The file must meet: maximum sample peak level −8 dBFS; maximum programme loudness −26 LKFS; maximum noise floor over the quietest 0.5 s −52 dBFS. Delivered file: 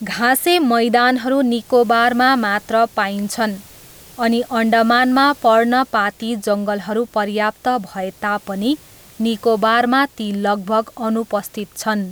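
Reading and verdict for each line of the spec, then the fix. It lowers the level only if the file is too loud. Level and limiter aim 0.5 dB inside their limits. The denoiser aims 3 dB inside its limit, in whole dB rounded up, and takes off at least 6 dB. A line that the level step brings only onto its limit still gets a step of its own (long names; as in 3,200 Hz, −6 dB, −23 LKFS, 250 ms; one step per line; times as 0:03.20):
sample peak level −3.5 dBFS: out of spec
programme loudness −17.0 LKFS: out of spec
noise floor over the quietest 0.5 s −42 dBFS: out of spec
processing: broadband denoise 6 dB, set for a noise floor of −42 dBFS
level −9.5 dB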